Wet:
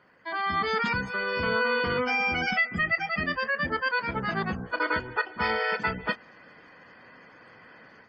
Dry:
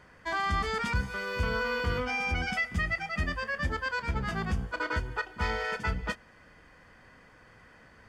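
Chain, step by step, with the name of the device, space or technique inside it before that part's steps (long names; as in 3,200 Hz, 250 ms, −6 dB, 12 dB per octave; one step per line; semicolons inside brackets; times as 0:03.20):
noise-suppressed video call (high-pass filter 180 Hz 12 dB per octave; gate on every frequency bin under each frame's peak −25 dB strong; automatic gain control gain up to 8 dB; level −2.5 dB; Opus 24 kbit/s 48,000 Hz)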